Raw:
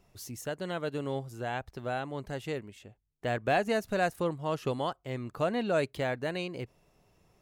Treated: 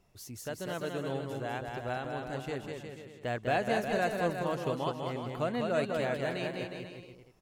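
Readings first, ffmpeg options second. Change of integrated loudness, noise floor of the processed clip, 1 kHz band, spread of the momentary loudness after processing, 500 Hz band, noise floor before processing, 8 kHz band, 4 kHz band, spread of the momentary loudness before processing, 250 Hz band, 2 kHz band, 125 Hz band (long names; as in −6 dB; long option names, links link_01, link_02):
−1.0 dB, −55 dBFS, −0.5 dB, 12 LU, −1.0 dB, −71 dBFS, −1.0 dB, −1.0 dB, 10 LU, −1.0 dB, −0.5 dB, −1.0 dB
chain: -af "aecho=1:1:200|360|488|590.4|672.3:0.631|0.398|0.251|0.158|0.1,volume=-3dB"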